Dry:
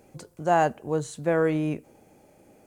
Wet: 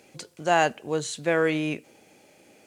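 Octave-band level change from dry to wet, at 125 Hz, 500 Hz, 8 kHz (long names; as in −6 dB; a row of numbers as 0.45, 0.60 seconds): −4.0, −0.5, +6.5 decibels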